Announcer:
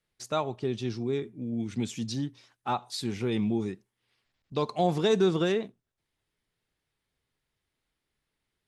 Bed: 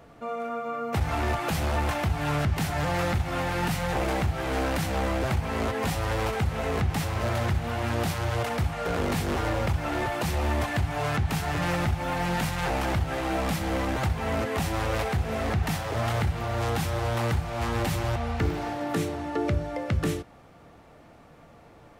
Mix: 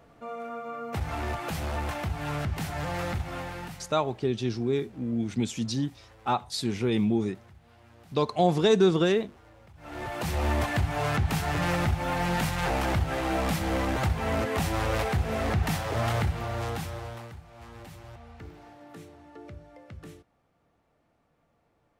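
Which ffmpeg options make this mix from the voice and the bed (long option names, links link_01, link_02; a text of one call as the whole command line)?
ffmpeg -i stem1.wav -i stem2.wav -filter_complex "[0:a]adelay=3600,volume=3dB[link_01];[1:a]volume=22.5dB,afade=type=out:start_time=3.22:duration=0.72:silence=0.0749894,afade=type=in:start_time=9.75:duration=0.72:silence=0.0421697,afade=type=out:start_time=16.11:duration=1.19:silence=0.11885[link_02];[link_01][link_02]amix=inputs=2:normalize=0" out.wav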